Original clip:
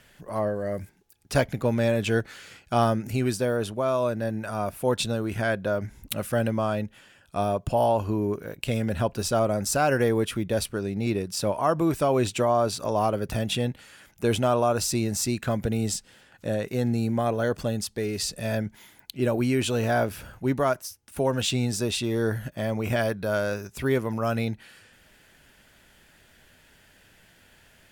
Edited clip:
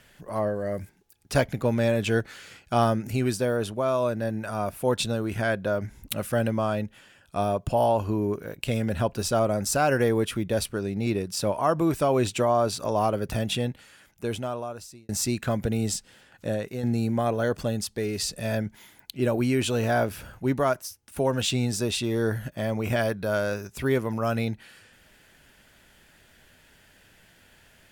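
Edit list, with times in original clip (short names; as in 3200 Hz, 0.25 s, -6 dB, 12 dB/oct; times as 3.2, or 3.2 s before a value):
13.45–15.09 fade out
16.48–16.83 fade out, to -7.5 dB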